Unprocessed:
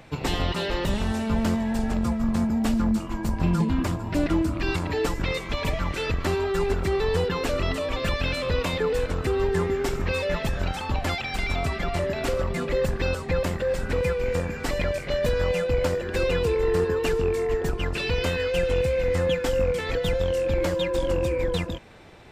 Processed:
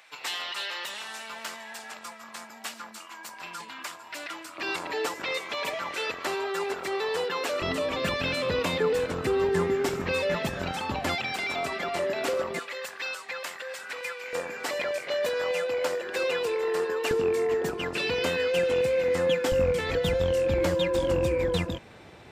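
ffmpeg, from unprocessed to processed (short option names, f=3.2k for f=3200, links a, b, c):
-af "asetnsamples=n=441:p=0,asendcmd='4.58 highpass f 520;7.62 highpass f 150;11.32 highpass f 330;12.59 highpass f 1200;14.33 highpass f 510;17.11 highpass f 210;19.52 highpass f 69',highpass=1.3k"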